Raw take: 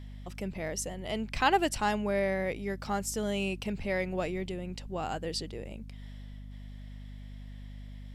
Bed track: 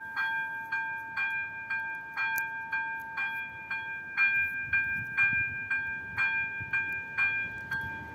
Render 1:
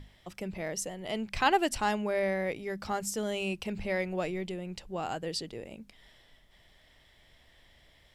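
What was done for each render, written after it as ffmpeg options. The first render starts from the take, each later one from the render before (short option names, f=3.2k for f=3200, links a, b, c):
-af "bandreject=f=50:t=h:w=6,bandreject=f=100:t=h:w=6,bandreject=f=150:t=h:w=6,bandreject=f=200:t=h:w=6,bandreject=f=250:t=h:w=6"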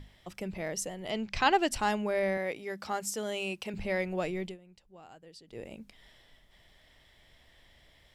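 -filter_complex "[0:a]asettb=1/sr,asplit=3[a][b][c];[a]atrim=end=1.104[d];[b]atrim=start=1.1:end=1.7,asetpts=PTS-STARTPTS,afade=t=in:d=0.004:c=qsin,afade=t=out:st=0.596:d=0.004:c=qsin,highshelf=f=7.9k:t=q:w=1.5:g=-9[e];[c]atrim=start=1.696[f];[d][e]acrossfade=d=0.004:c1=hsin:c2=qsin[g];[g][f]acrossfade=d=0.004:c1=qsin:c2=hsin,asettb=1/sr,asplit=3[h][i][j];[h]atrim=end=2.374[k];[i]atrim=start=2.37:end=3.74,asetpts=PTS-STARTPTS,afade=t=in:d=0.004:c=qsin,afade=t=out:st=1.366:d=0.004:c=qsin,highpass=f=310:p=1[l];[j]atrim=start=3.736[m];[k][l]acrossfade=d=0.004:c1=hsin:c2=qsin[n];[n][m]acrossfade=d=0.004:c1=qsin:c2=hsin,asplit=3[o][p][q];[o]atrim=end=4.58,asetpts=PTS-STARTPTS,afade=t=out:st=4.45:d=0.13:silence=0.133352[r];[p]atrim=start=4.58:end=5.47,asetpts=PTS-STARTPTS,volume=-17.5dB[s];[q]atrim=start=5.47,asetpts=PTS-STARTPTS,afade=t=in:d=0.13:silence=0.133352[t];[r][s][t]concat=n=3:v=0:a=1"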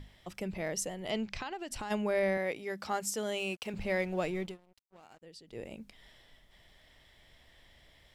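-filter_complex "[0:a]asplit=3[a][b][c];[a]afade=t=out:st=1.25:d=0.02[d];[b]acompressor=threshold=-35dB:ratio=16:attack=3.2:release=140:knee=1:detection=peak,afade=t=in:st=1.25:d=0.02,afade=t=out:st=1.9:d=0.02[e];[c]afade=t=in:st=1.9:d=0.02[f];[d][e][f]amix=inputs=3:normalize=0,asettb=1/sr,asplit=3[g][h][i];[g]atrim=end=3.384[j];[h]atrim=start=3.38:end=5.22,asetpts=PTS-STARTPTS,afade=t=in:d=0.004:c=qsin,afade=t=out:st=1.836:d=0.004:c=qsin,aeval=exprs='sgn(val(0))*max(abs(val(0))-0.00158,0)':c=same[k];[i]atrim=start=5.216[l];[j][k]acrossfade=d=0.004:c1=hsin:c2=qsin[m];[m][l]acrossfade=d=0.004:c1=qsin:c2=hsin"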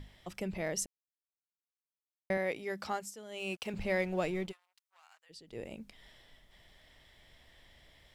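-filter_complex "[0:a]asplit=3[a][b][c];[a]afade=t=out:st=4.51:d=0.02[d];[b]highpass=f=980:w=0.5412,highpass=f=980:w=1.3066,afade=t=in:st=4.51:d=0.02,afade=t=out:st=5.29:d=0.02[e];[c]afade=t=in:st=5.29:d=0.02[f];[d][e][f]amix=inputs=3:normalize=0,asplit=5[g][h][i][j][k];[g]atrim=end=0.86,asetpts=PTS-STARTPTS,afade=t=out:st=0.856:d=0.004:c=hsin[l];[h]atrim=start=0.86:end=2.3,asetpts=PTS-STARTPTS,volume=0[m];[i]atrim=start=2.3:end=3.12,asetpts=PTS-STARTPTS,afade=t=in:d=0.004:c=hsin,afade=t=out:st=0.56:d=0.26:silence=0.211349[n];[j]atrim=start=3.12:end=3.29,asetpts=PTS-STARTPTS,volume=-13.5dB[o];[k]atrim=start=3.29,asetpts=PTS-STARTPTS,afade=t=in:d=0.26:silence=0.211349[p];[l][m][n][o][p]concat=n=5:v=0:a=1"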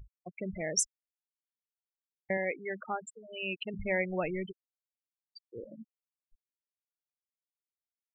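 -af "afftfilt=real='re*gte(hypot(re,im),0.0251)':imag='im*gte(hypot(re,im),0.0251)':win_size=1024:overlap=0.75,equalizer=f=6.6k:t=o:w=2.7:g=9"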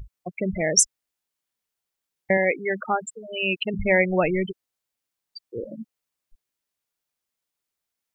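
-af "volume=11.5dB"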